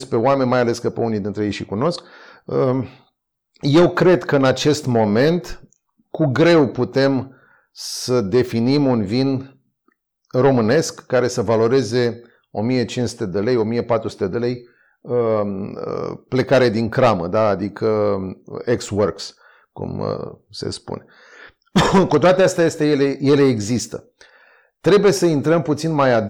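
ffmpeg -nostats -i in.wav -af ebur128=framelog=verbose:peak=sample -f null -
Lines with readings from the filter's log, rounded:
Integrated loudness:
  I:         -18.2 LUFS
  Threshold: -29.1 LUFS
Loudness range:
  LRA:         4.9 LU
  Threshold: -39.2 LUFS
  LRA low:   -22.0 LUFS
  LRA high:  -17.1 LUFS
Sample peak:
  Peak:       -7.0 dBFS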